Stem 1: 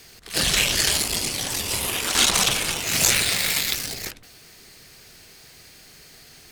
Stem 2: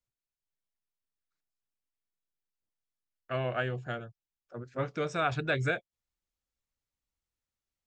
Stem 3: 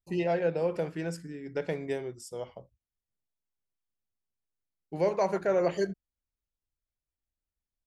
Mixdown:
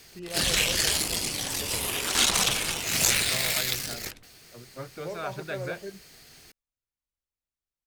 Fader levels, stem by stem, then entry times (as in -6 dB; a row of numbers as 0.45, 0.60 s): -4.0, -6.5, -10.5 dB; 0.00, 0.00, 0.05 s